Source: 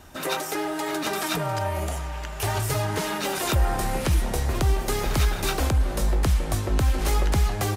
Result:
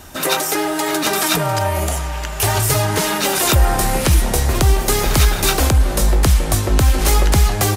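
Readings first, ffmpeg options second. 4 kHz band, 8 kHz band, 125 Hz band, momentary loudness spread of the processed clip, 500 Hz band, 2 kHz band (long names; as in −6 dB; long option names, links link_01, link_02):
+10.5 dB, +13.0 dB, +8.0 dB, 4 LU, +8.0 dB, +9.0 dB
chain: -af "highshelf=frequency=4500:gain=6.5,volume=8dB"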